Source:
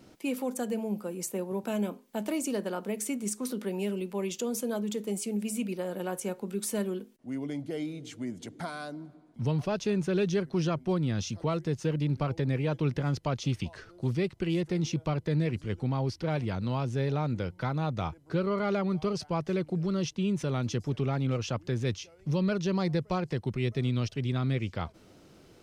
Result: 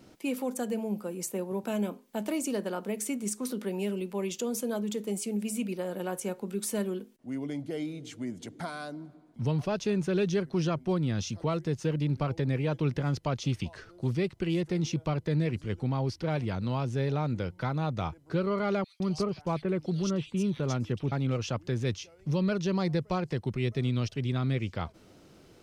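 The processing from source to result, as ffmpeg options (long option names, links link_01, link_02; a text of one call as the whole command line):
ffmpeg -i in.wav -filter_complex "[0:a]asettb=1/sr,asplit=3[link_01][link_02][link_03];[link_01]atrim=end=18.844[link_04];[link_02]atrim=start=18.84:end=21.12,asetpts=PTS-STARTPTS,afade=type=in:duration=0.004:curve=qsin,afade=type=out:start_time=2.276:duration=0.004:curve=qsin,acrossover=split=2900[link_05][link_06];[link_05]adelay=160[link_07];[link_07][link_06]amix=inputs=2:normalize=0,atrim=end_sample=100548[link_08];[link_03]atrim=start=21.116[link_09];[link_04][link_08]acrossfade=duration=0.004:curve1=hsin:curve2=qsin[link_10];[link_10][link_09]acrossfade=duration=0.004:curve1=qsin:curve2=hsin" out.wav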